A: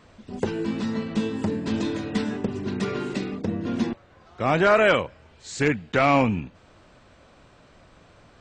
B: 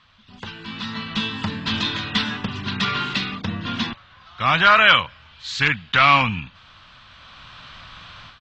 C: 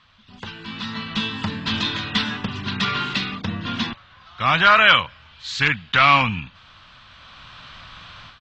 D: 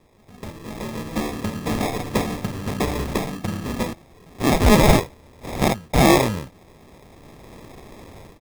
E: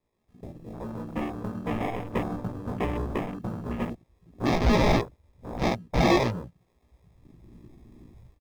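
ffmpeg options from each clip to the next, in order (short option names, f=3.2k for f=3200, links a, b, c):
-af "dynaudnorm=f=590:g=3:m=16dB,firequalizer=gain_entry='entry(130,0);entry(380,-15);entry(1100,8);entry(2100,6);entry(3300,15);entry(8800,-14)':delay=0.05:min_phase=1,volume=-7dB"
-af anull
-af "acrusher=samples=30:mix=1:aa=0.000001"
-filter_complex "[0:a]asplit=2[a][b];[b]adelay=17,volume=-2dB[c];[a][c]amix=inputs=2:normalize=0,asoftclip=type=tanh:threshold=-6dB,afwtdn=0.0282,volume=-7dB"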